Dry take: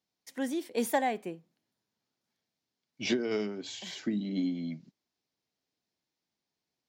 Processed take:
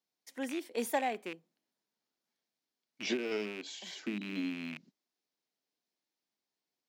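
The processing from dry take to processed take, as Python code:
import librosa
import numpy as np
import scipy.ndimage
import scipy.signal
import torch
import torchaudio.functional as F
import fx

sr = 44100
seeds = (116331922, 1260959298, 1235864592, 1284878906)

y = fx.rattle_buzz(x, sr, strikes_db=-45.0, level_db=-28.0)
y = scipy.signal.sosfilt(scipy.signal.butter(2, 230.0, 'highpass', fs=sr, output='sos'), y)
y = y * librosa.db_to_amplitude(-3.5)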